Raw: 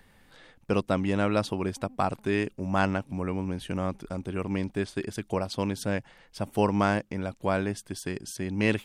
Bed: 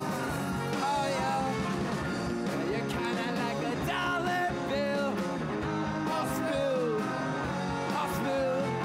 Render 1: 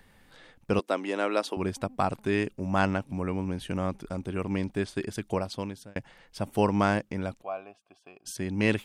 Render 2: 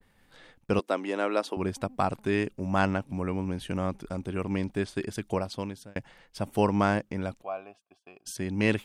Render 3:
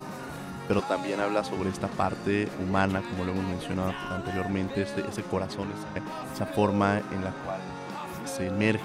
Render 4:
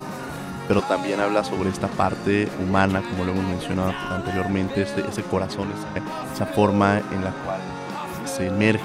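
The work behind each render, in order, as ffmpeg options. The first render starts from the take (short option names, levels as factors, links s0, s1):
-filter_complex "[0:a]asettb=1/sr,asplit=3[s0][s1][s2];[s0]atrim=end=0.794[s3];[s1]atrim=start=0.79:end=1.57,asetpts=PTS-STARTPTS,afade=t=in:d=0.004:c=qsin,afade=t=out:st=0.776:d=0.004:c=qsin,highpass=f=300:w=0.5412,highpass=f=300:w=1.3066[s4];[s2]atrim=start=1.566[s5];[s3][s4]acrossfade=d=0.004:c1=hsin:c2=qsin[s6];[s6][s5]acrossfade=d=0.004:c1=qsin:c2=hsin,asplit=3[s7][s8][s9];[s7]afade=t=out:st=7.41:d=0.02[s10];[s8]asplit=3[s11][s12][s13];[s11]bandpass=f=730:t=q:w=8,volume=1[s14];[s12]bandpass=f=1090:t=q:w=8,volume=0.501[s15];[s13]bandpass=f=2440:t=q:w=8,volume=0.355[s16];[s14][s15][s16]amix=inputs=3:normalize=0,afade=t=in:st=7.41:d=0.02,afade=t=out:st=8.25:d=0.02[s17];[s9]afade=t=in:st=8.25:d=0.02[s18];[s10][s17][s18]amix=inputs=3:normalize=0,asplit=2[s19][s20];[s19]atrim=end=5.96,asetpts=PTS-STARTPTS,afade=t=out:st=5.35:d=0.61[s21];[s20]atrim=start=5.96,asetpts=PTS-STARTPTS,afade=t=in:d=0.004:c=hsin[s22];[s21][s22]concat=n=2:v=0:a=1"
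-af "agate=range=0.0224:threshold=0.00224:ratio=3:detection=peak,adynamicequalizer=threshold=0.0126:dfrequency=1900:dqfactor=0.7:tfrequency=1900:tqfactor=0.7:attack=5:release=100:ratio=0.375:range=2:mode=cutabove:tftype=highshelf"
-filter_complex "[1:a]volume=0.501[s0];[0:a][s0]amix=inputs=2:normalize=0"
-af "volume=2"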